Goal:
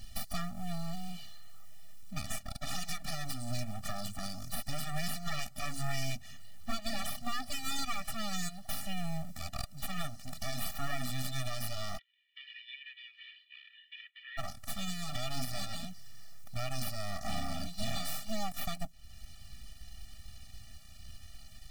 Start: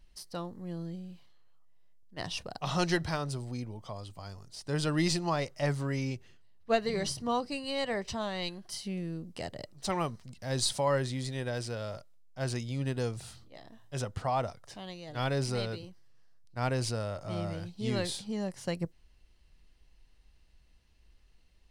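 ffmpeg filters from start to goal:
-filter_complex "[0:a]highshelf=f=2.5k:g=11.5,acompressor=threshold=-47dB:ratio=2.5,alimiter=level_in=10.5dB:limit=-24dB:level=0:latency=1:release=171,volume=-10.5dB,aeval=exprs='abs(val(0))':c=same,acrusher=bits=5:mode=log:mix=0:aa=0.000001,asplit=3[a][b][c];[a]afade=t=out:st=11.97:d=0.02[d];[b]asuperpass=centerf=2500:order=8:qfactor=1.6,afade=t=in:st=11.97:d=0.02,afade=t=out:st=14.37:d=0.02[e];[c]afade=t=in:st=14.37:d=0.02[f];[d][e][f]amix=inputs=3:normalize=0,afftfilt=real='re*eq(mod(floor(b*sr/1024/280),2),0)':imag='im*eq(mod(floor(b*sr/1024/280),2),0)':win_size=1024:overlap=0.75,volume=14.5dB"

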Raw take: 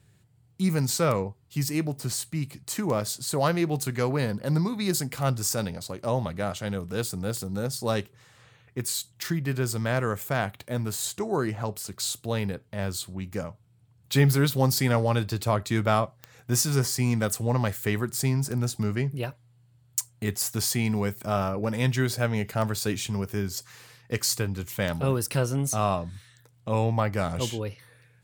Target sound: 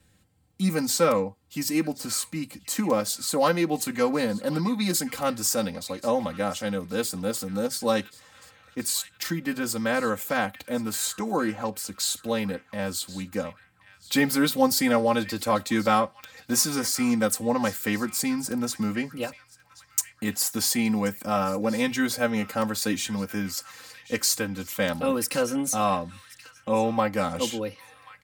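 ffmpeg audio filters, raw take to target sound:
-filter_complex "[0:a]aecho=1:1:3.8:0.94,acrossover=split=120|1300[a][b][c];[a]acompressor=threshold=-53dB:ratio=6[d];[c]asplit=2[e][f];[f]adelay=1081,lowpass=f=3k:p=1,volume=-12dB,asplit=2[g][h];[h]adelay=1081,lowpass=f=3k:p=1,volume=0.42,asplit=2[i][j];[j]adelay=1081,lowpass=f=3k:p=1,volume=0.42,asplit=2[k][l];[l]adelay=1081,lowpass=f=3k:p=1,volume=0.42[m];[e][g][i][k][m]amix=inputs=5:normalize=0[n];[d][b][n]amix=inputs=3:normalize=0"

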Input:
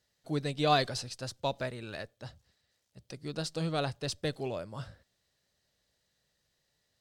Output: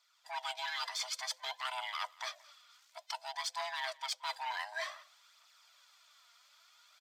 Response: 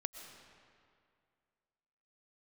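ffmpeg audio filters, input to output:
-filter_complex "[0:a]afftfilt=real='real(if(lt(b,1008),b+24*(1-2*mod(floor(b/24),2)),b),0)':imag='imag(if(lt(b,1008),b+24*(1-2*mod(floor(b/24),2)),b),0)':win_size=2048:overlap=0.75,acrossover=split=2400[a][b];[b]acrusher=bits=3:mode=log:mix=0:aa=0.000001[c];[a][c]amix=inputs=2:normalize=0,aresample=32000,aresample=44100,alimiter=level_in=0.5dB:limit=-24dB:level=0:latency=1:release=47,volume=-0.5dB,highshelf=f=4.2k:g=-6,asoftclip=type=tanh:threshold=-29dB,highpass=f=1.1k:w=0.5412,highpass=f=1.1k:w=1.3066,equalizer=f=9.9k:w=3.8:g=-8,aphaser=in_gain=1:out_gain=1:delay=4.4:decay=0.41:speed=0.55:type=triangular,areverse,acompressor=threshold=-52dB:ratio=10,areverse,asplit=2[d][e];[e]adelay=174.9,volume=-23dB,highshelf=f=4k:g=-3.94[f];[d][f]amix=inputs=2:normalize=0,dynaudnorm=f=160:g=3:m=9dB,volume=7.5dB"

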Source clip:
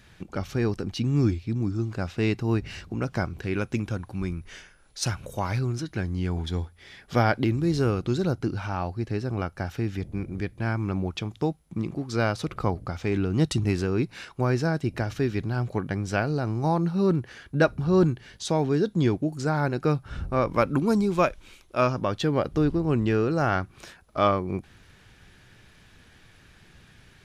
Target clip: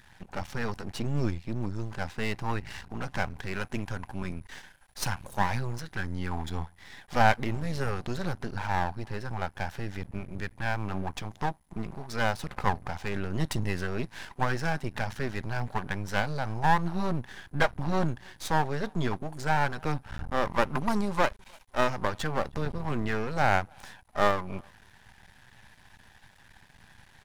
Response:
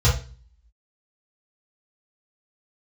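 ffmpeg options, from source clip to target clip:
-filter_complex "[0:a]superequalizer=6b=0.282:7b=0.562:9b=3.16:11b=2:16b=1.58,asplit=2[a][b];[b]adelay=310,highpass=300,lowpass=3.4k,asoftclip=type=hard:threshold=-14.5dB,volume=-29dB[c];[a][c]amix=inputs=2:normalize=0,aeval=exprs='max(val(0),0)':c=same"

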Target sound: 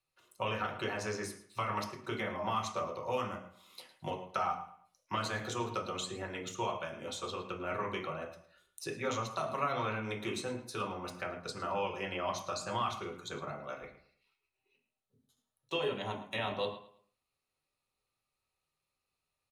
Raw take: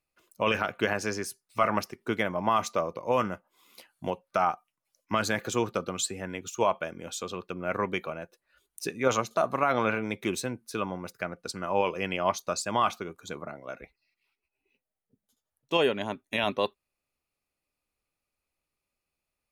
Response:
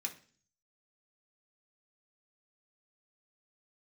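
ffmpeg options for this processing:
-filter_complex "[0:a]acrossover=split=220|2100[a][b][c];[a]acompressor=threshold=-42dB:ratio=4[d];[b]acompressor=threshold=-33dB:ratio=4[e];[c]acompressor=threshold=-42dB:ratio=4[f];[d][e][f]amix=inputs=3:normalize=0,asplit=2[g][h];[h]adelay=109,lowpass=f=4.4k:p=1,volume=-14dB,asplit=2[i][j];[j]adelay=109,lowpass=f=4.4k:p=1,volume=0.33,asplit=2[k][l];[l]adelay=109,lowpass=f=4.4k:p=1,volume=0.33[m];[g][i][k][m]amix=inputs=4:normalize=0[n];[1:a]atrim=start_sample=2205,atrim=end_sample=3969,asetrate=22932,aresample=44100[o];[n][o]afir=irnorm=-1:irlink=0,volume=-4.5dB"

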